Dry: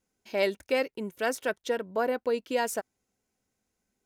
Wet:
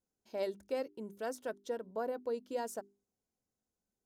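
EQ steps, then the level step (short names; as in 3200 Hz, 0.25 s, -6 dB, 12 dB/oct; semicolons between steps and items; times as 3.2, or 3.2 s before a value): bell 2300 Hz -12 dB 1.3 oct; high shelf 8700 Hz -5.5 dB; notches 50/100/150/200/250/300/350/400 Hz; -8.0 dB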